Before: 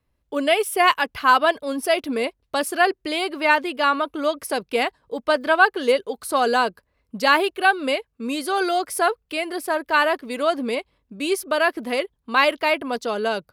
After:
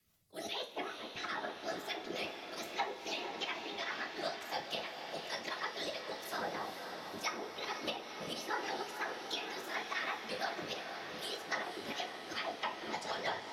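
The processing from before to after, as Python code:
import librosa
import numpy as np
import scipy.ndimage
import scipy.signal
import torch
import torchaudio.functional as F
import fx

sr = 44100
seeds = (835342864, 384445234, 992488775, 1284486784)

y = fx.pitch_ramps(x, sr, semitones=4.0, every_ms=156)
y = librosa.effects.preemphasis(y, coef=0.9, zi=[0.0])
y = fx.auto_swell(y, sr, attack_ms=130.0)
y = fx.formant_shift(y, sr, semitones=2)
y = fx.whisperise(y, sr, seeds[0])
y = fx.env_lowpass_down(y, sr, base_hz=600.0, full_db=-29.0)
y = fx.rotary(y, sr, hz=6.3)
y = fx.echo_diffused(y, sr, ms=485, feedback_pct=74, wet_db=-10.5)
y = fx.rev_double_slope(y, sr, seeds[1], early_s=0.32, late_s=4.0, knee_db=-18, drr_db=2.5)
y = fx.band_squash(y, sr, depth_pct=40)
y = y * 10.0 ** (3.0 / 20.0)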